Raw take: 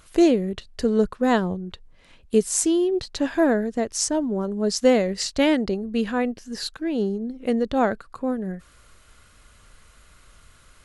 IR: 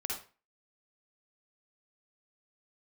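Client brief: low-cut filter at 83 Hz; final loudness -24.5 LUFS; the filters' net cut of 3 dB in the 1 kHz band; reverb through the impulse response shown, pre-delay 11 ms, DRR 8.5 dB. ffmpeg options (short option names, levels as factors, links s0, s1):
-filter_complex "[0:a]highpass=83,equalizer=f=1000:t=o:g=-4.5,asplit=2[s0][s1];[1:a]atrim=start_sample=2205,adelay=11[s2];[s1][s2]afir=irnorm=-1:irlink=0,volume=0.299[s3];[s0][s3]amix=inputs=2:normalize=0,volume=0.891"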